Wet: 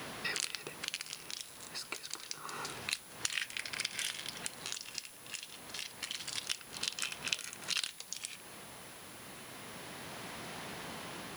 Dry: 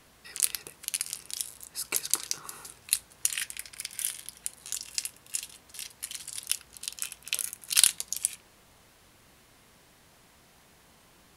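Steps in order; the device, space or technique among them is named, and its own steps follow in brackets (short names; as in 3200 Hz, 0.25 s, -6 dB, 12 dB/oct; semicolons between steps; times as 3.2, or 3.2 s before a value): medium wave at night (BPF 130–4500 Hz; compressor 6:1, threshold -49 dBFS, peak gain reduction 25.5 dB; tremolo 0.28 Hz, depth 57%; whine 10000 Hz -73 dBFS; white noise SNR 14 dB); gain +16 dB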